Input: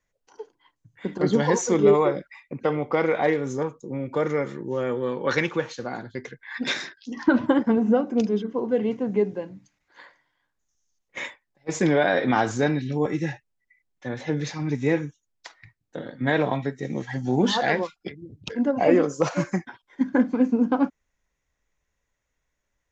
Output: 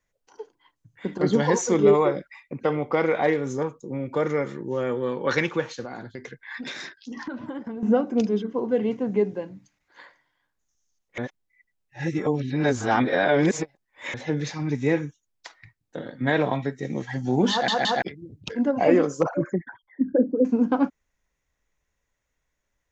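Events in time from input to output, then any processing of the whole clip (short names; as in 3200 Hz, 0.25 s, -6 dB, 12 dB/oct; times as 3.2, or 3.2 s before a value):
5.85–7.83 compressor, threshold -31 dBFS
11.18–14.14 reverse
17.51 stutter in place 0.17 s, 3 plays
19.23–20.45 formant sharpening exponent 3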